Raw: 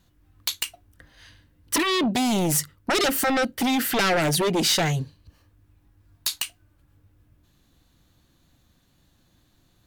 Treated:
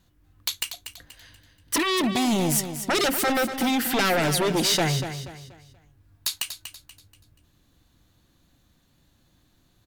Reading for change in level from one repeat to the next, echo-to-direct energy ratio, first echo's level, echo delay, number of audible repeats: −9.0 dB, −9.5 dB, −10.0 dB, 240 ms, 3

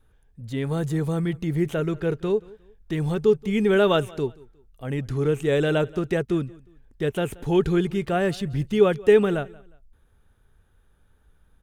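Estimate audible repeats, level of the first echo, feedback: 2, −23.0 dB, 32%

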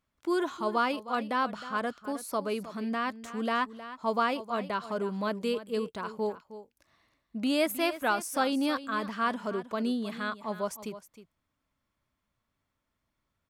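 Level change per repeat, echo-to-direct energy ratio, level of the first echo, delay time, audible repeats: repeats not evenly spaced, −14.0 dB, −14.0 dB, 313 ms, 1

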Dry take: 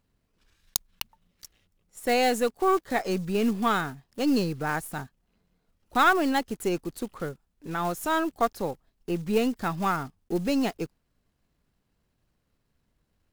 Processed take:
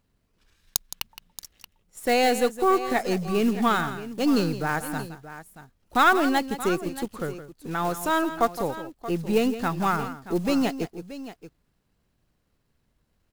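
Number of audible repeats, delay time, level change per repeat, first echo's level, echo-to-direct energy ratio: 2, 166 ms, repeats not evenly spaced, −12.5 dB, −10.5 dB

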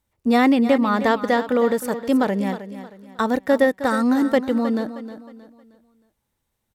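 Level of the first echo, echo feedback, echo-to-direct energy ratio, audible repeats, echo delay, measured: −12.5 dB, 36%, −12.0 dB, 3, 313 ms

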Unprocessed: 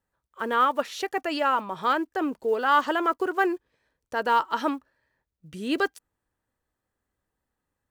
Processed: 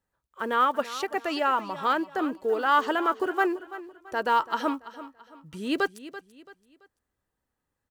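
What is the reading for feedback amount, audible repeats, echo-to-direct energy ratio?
35%, 3, −14.5 dB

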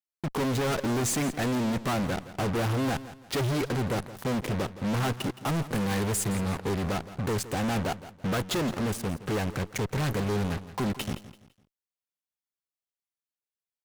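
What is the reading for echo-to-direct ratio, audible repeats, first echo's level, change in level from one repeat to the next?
−14.5 dB, 3, −15.0 dB, −9.5 dB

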